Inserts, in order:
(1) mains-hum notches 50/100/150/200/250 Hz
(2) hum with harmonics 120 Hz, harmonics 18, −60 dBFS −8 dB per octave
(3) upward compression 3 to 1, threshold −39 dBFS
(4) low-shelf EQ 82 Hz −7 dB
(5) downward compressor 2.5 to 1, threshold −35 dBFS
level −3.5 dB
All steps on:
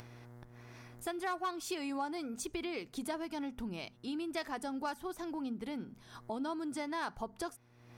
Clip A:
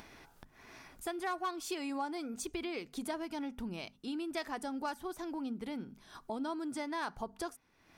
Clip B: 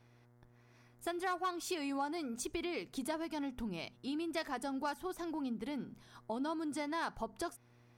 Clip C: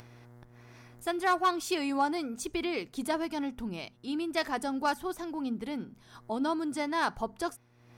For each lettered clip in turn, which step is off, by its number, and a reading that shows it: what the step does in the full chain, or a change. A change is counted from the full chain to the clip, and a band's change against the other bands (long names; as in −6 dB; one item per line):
2, 125 Hz band −2.5 dB
3, change in momentary loudness spread −9 LU
5, average gain reduction 4.5 dB